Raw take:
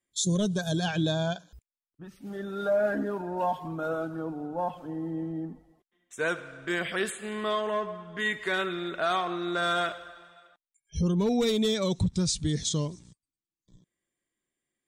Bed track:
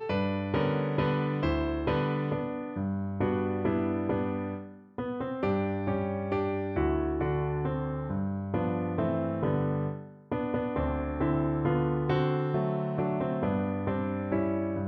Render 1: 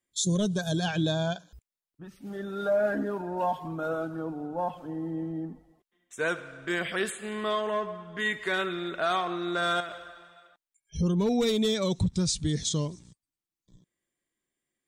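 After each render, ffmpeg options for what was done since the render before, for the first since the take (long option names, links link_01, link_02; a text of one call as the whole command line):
ffmpeg -i in.wav -filter_complex "[0:a]asettb=1/sr,asplit=3[link_01][link_02][link_03];[link_01]atrim=end=9.804[link_04];[link_02]atrim=start=9.8:end=10.99,asetpts=PTS-STARTPTS,afade=type=in:duration=0.004:curve=qsin,afade=type=out:start_time=1.186:duration=0.004:curve=qsin,acompressor=threshold=-32dB:ratio=12:attack=3.2:release=140:knee=1:detection=peak[link_05];[link_03]atrim=start=10.986[link_06];[link_04][link_05]acrossfade=duration=0.004:curve1=hsin:curve2=qsin[link_07];[link_07][link_06]acrossfade=duration=0.004:curve1=qsin:curve2=hsin" out.wav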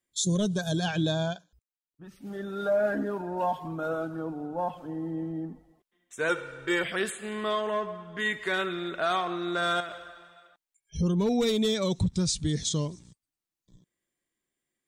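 ffmpeg -i in.wav -filter_complex "[0:a]asettb=1/sr,asplit=3[link_01][link_02][link_03];[link_01]atrim=end=6.294[link_04];[link_02]atrim=start=6.29:end=6.84,asetpts=PTS-STARTPTS,afade=type=in:duration=0.004:curve=qsin,afade=type=out:start_time=0.546:duration=0.004:curve=qsin,aecho=1:1:2.2:0.98,atrim=end_sample=24255[link_05];[link_03]atrim=start=6.836[link_06];[link_04][link_05]acrossfade=duration=0.004:curve1=hsin:curve2=qsin[link_07];[link_07][link_06]acrossfade=duration=0.004:curve1=qsin:curve2=hsin,asplit=3[link_08][link_09][link_10];[link_08]atrim=end=1.49,asetpts=PTS-STARTPTS,afade=type=out:start_time=1.24:duration=0.25:silence=0.211349[link_11];[link_09]atrim=start=1.49:end=1.87,asetpts=PTS-STARTPTS,volume=-13.5dB[link_12];[link_10]atrim=start=1.87,asetpts=PTS-STARTPTS,afade=type=in:duration=0.25:silence=0.211349[link_13];[link_11][link_12][link_13]concat=n=3:v=0:a=1" out.wav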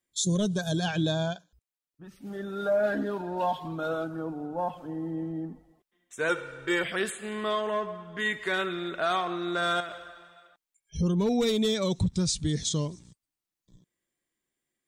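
ffmpeg -i in.wav -filter_complex "[0:a]asettb=1/sr,asplit=3[link_01][link_02][link_03];[link_01]atrim=end=2.834[link_04];[link_02]atrim=start=2.83:end=4.04,asetpts=PTS-STARTPTS,afade=type=in:duration=0.004:curve=qsin,afade=type=out:start_time=1.206:duration=0.004:curve=qsin,equalizer=frequency=3700:width=1.7:gain=9.5[link_05];[link_03]atrim=start=4.036[link_06];[link_04][link_05]acrossfade=duration=0.004:curve1=hsin:curve2=qsin[link_07];[link_07][link_06]acrossfade=duration=0.004:curve1=qsin:curve2=hsin" out.wav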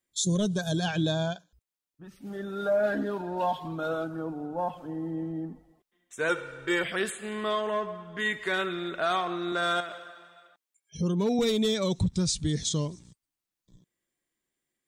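ffmpeg -i in.wav -filter_complex "[0:a]asettb=1/sr,asplit=3[link_01][link_02][link_03];[link_01]atrim=end=9.524[link_04];[link_02]atrim=start=9.52:end=11.39,asetpts=PTS-STARTPTS,afade=type=in:duration=0.004:curve=qsin,afade=type=out:start_time=1.866:duration=0.004:curve=qsin,highpass=150[link_05];[link_03]atrim=start=11.386[link_06];[link_04][link_05]acrossfade=duration=0.004:curve1=hsin:curve2=qsin[link_07];[link_07][link_06]acrossfade=duration=0.004:curve1=qsin:curve2=hsin" out.wav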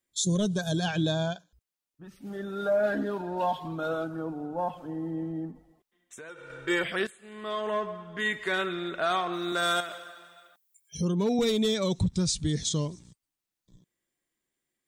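ffmpeg -i in.wav -filter_complex "[0:a]asettb=1/sr,asplit=3[link_01][link_02][link_03];[link_01]atrim=end=5.514[link_04];[link_02]atrim=start=5.51:end=6.5,asetpts=PTS-STARTPTS,afade=type=in:duration=0.004:curve=qsin,afade=type=out:start_time=0.986:duration=0.004:curve=qsin,acompressor=threshold=-42dB:ratio=6:attack=3.2:release=140:knee=1:detection=peak[link_05];[link_03]atrim=start=6.496[link_06];[link_04][link_05]acrossfade=duration=0.004:curve1=hsin:curve2=qsin[link_07];[link_07][link_06]acrossfade=duration=0.004:curve1=qsin:curve2=hsin,asettb=1/sr,asplit=3[link_08][link_09][link_10];[link_08]atrim=end=9.334[link_11];[link_09]atrim=start=9.33:end=11.05,asetpts=PTS-STARTPTS,afade=type=in:duration=0.004:curve=qsin,afade=type=out:start_time=1.716:duration=0.004:curve=qsin,aemphasis=mode=production:type=50fm[link_12];[link_10]atrim=start=11.046[link_13];[link_11][link_12]acrossfade=duration=0.004:curve1=hsin:curve2=qsin[link_14];[link_14][link_13]acrossfade=duration=0.004:curve1=qsin:curve2=hsin,asplit=2[link_15][link_16];[link_15]atrim=end=7.07,asetpts=PTS-STARTPTS,afade=type=out:start_time=7.066:duration=0.004:curve=hsin:silence=0.16788[link_17];[link_16]atrim=start=7.07,asetpts=PTS-STARTPTS,afade=type=in:duration=0.63:curve=qua:silence=0.16788[link_18];[link_17][link_18]concat=n=2:v=0:a=1" out.wav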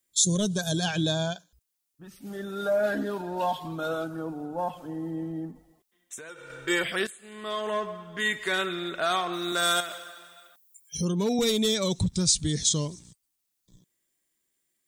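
ffmpeg -i in.wav -af "highshelf=frequency=4400:gain=11" out.wav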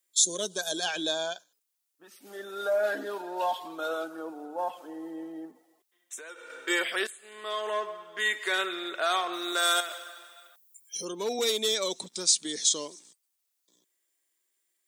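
ffmpeg -i in.wav -af "highpass=frequency=310:width=0.5412,highpass=frequency=310:width=1.3066,lowshelf=frequency=410:gain=-5" out.wav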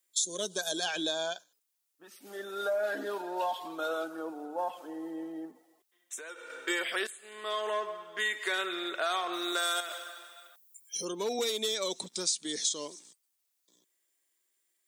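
ffmpeg -i in.wav -af "acompressor=threshold=-28dB:ratio=4" out.wav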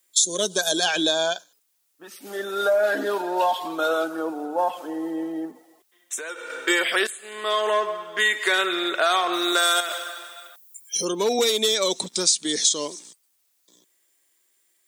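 ffmpeg -i in.wav -af "volume=10.5dB" out.wav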